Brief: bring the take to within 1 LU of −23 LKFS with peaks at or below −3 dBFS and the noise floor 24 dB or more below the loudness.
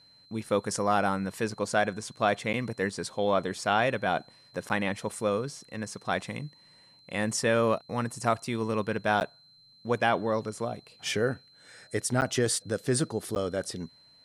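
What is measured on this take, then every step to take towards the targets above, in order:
number of dropouts 5; longest dropout 9.7 ms; interfering tone 4,100 Hz; level of the tone −56 dBFS; integrated loudness −29.5 LKFS; sample peak −10.0 dBFS; target loudness −23.0 LKFS
→ repair the gap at 0:02.53/0:04.69/0:09.20/0:12.21/0:13.35, 9.7 ms
notch filter 4,100 Hz, Q 30
level +6.5 dB

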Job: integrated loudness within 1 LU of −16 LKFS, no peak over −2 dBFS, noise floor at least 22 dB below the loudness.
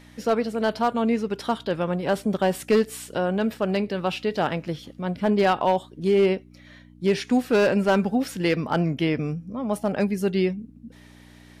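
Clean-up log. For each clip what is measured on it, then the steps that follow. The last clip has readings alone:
share of clipped samples 0.6%; peaks flattened at −13.0 dBFS; mains hum 60 Hz; hum harmonics up to 300 Hz; level of the hum −49 dBFS; integrated loudness −24.0 LKFS; sample peak −13.0 dBFS; target loudness −16.0 LKFS
→ clipped peaks rebuilt −13 dBFS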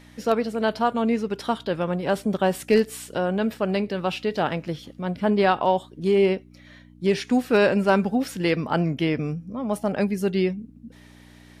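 share of clipped samples 0.0%; mains hum 60 Hz; hum harmonics up to 300 Hz; level of the hum −49 dBFS
→ hum removal 60 Hz, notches 5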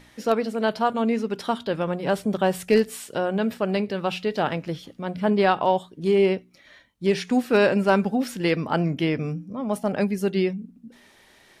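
mains hum none found; integrated loudness −24.0 LKFS; sample peak −7.0 dBFS; target loudness −16.0 LKFS
→ level +8 dB
brickwall limiter −2 dBFS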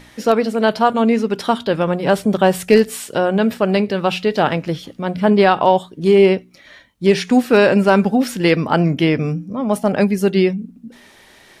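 integrated loudness −16.5 LKFS; sample peak −2.0 dBFS; background noise floor −48 dBFS

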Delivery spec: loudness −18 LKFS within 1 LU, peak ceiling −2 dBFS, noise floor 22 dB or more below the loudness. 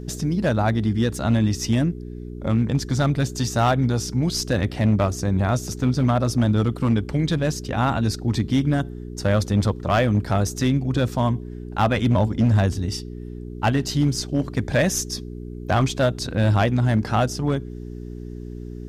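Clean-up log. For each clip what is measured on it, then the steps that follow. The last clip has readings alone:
share of clipped samples 1.3%; peaks flattened at −12.5 dBFS; mains hum 60 Hz; hum harmonics up to 420 Hz; level of the hum −33 dBFS; integrated loudness −22.0 LKFS; sample peak −12.5 dBFS; target loudness −18.0 LKFS
→ clipped peaks rebuilt −12.5 dBFS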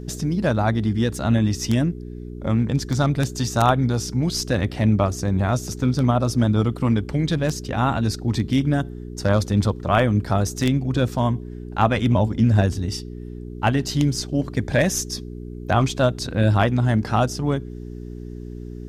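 share of clipped samples 0.0%; mains hum 60 Hz; hum harmonics up to 420 Hz; level of the hum −33 dBFS
→ hum removal 60 Hz, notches 7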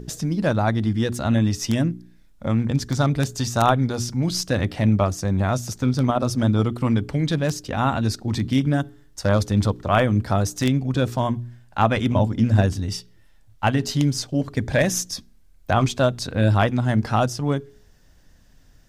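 mains hum none found; integrated loudness −22.0 LKFS; sample peak −2.5 dBFS; target loudness −18.0 LKFS
→ level +4 dB
brickwall limiter −2 dBFS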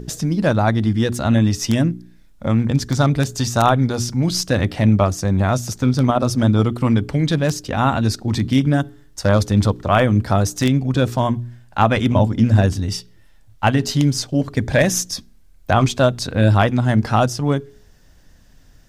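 integrated loudness −18.0 LKFS; sample peak −2.0 dBFS; background noise floor −48 dBFS

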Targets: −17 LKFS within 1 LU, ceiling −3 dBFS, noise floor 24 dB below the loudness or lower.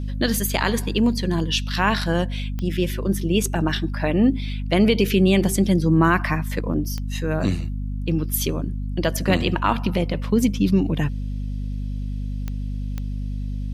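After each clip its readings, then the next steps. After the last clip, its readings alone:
number of clicks 4; mains hum 50 Hz; hum harmonics up to 250 Hz; level of the hum −24 dBFS; integrated loudness −22.5 LKFS; sample peak −5.0 dBFS; target loudness −17.0 LKFS
→ click removal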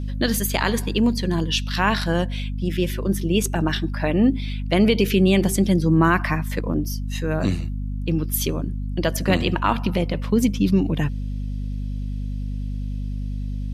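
number of clicks 0; mains hum 50 Hz; hum harmonics up to 250 Hz; level of the hum −24 dBFS
→ hum removal 50 Hz, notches 5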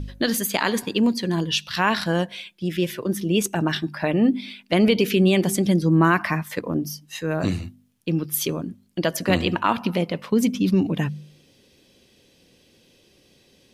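mains hum none found; integrated loudness −22.5 LKFS; sample peak −5.5 dBFS; target loudness −17.0 LKFS
→ level +5.5 dB
brickwall limiter −3 dBFS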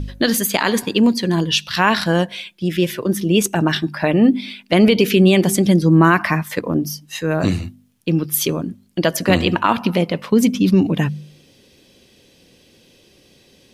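integrated loudness −17.5 LKFS; sample peak −3.0 dBFS; background noise floor −53 dBFS

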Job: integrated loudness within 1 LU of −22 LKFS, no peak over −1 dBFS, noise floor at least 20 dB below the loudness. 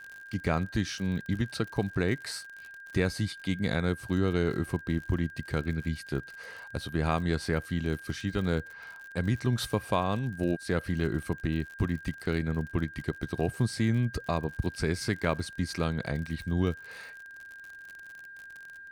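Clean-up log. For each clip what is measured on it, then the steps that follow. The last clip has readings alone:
crackle rate 56 per second; interfering tone 1,600 Hz; level of the tone −44 dBFS; integrated loudness −31.0 LKFS; sample peak −13.5 dBFS; target loudness −22.0 LKFS
→ click removal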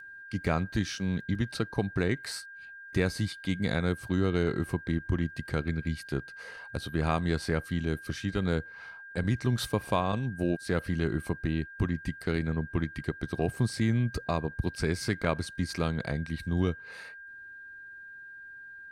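crackle rate 0.16 per second; interfering tone 1,600 Hz; level of the tone −44 dBFS
→ notch filter 1,600 Hz, Q 30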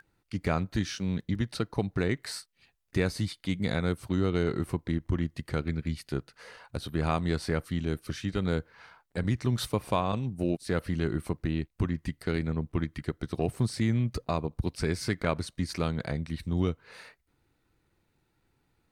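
interfering tone none found; integrated loudness −31.5 LKFS; sample peak −13.5 dBFS; target loudness −22.0 LKFS
→ level +9.5 dB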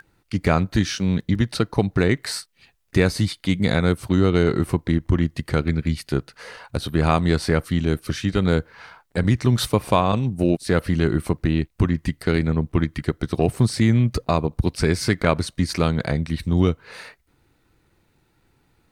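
integrated loudness −22.0 LKFS; sample peak −4.0 dBFS; background noise floor −65 dBFS

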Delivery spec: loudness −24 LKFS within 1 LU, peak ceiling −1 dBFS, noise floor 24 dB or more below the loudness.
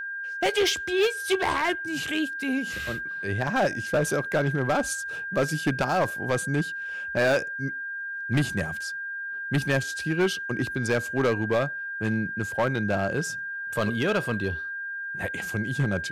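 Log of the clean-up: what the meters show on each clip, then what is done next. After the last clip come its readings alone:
share of clipped samples 1.4%; peaks flattened at −17.5 dBFS; interfering tone 1,600 Hz; level of the tone −31 dBFS; integrated loudness −27.0 LKFS; sample peak −17.5 dBFS; target loudness −24.0 LKFS
→ clipped peaks rebuilt −17.5 dBFS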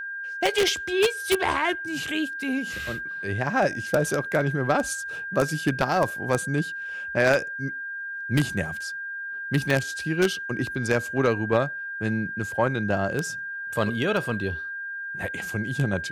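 share of clipped samples 0.0%; interfering tone 1,600 Hz; level of the tone −31 dBFS
→ notch filter 1,600 Hz, Q 30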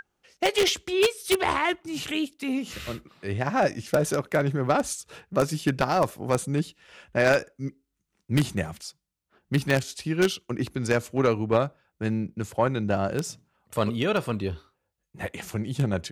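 interfering tone none found; integrated loudness −26.5 LKFS; sample peak −7.5 dBFS; target loudness −24.0 LKFS
→ level +2.5 dB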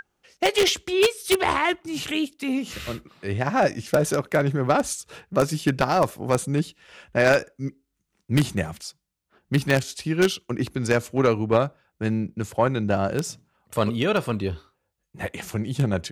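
integrated loudness −24.0 LKFS; sample peak −5.0 dBFS; background noise floor −78 dBFS

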